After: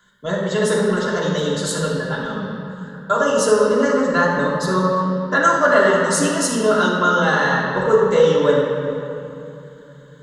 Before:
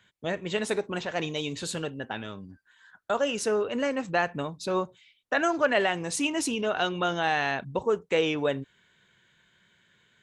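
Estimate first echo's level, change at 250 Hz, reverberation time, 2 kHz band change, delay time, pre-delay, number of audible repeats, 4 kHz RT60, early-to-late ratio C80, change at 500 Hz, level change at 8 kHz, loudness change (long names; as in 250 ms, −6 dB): no echo audible, +11.0 dB, 2.9 s, +10.0 dB, no echo audible, 3 ms, no echo audible, 1.8 s, 1.5 dB, +12.0 dB, +11.0 dB, +10.5 dB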